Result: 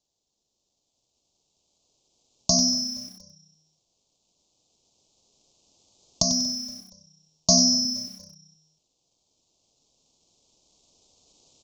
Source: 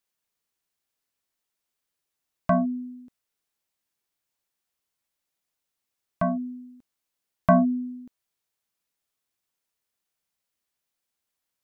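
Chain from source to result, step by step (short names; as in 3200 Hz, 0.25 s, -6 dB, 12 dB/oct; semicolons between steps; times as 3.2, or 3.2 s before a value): recorder AGC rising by 5.4 dB/s; HPF 40 Hz 24 dB/oct, from 7.85 s 96 Hz; compressor 3:1, threshold -19 dBFS, peak gain reduction 8 dB; hard clip -15.5 dBFS, distortion -10 dB; frequency-shifting echo 0.235 s, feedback 48%, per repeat -31 Hz, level -22 dB; careless resampling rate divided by 8×, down none, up zero stuff; Butterworth band-stop 1700 Hz, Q 0.55; downsampling 16000 Hz; lo-fi delay 95 ms, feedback 35%, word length 7-bit, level -9.5 dB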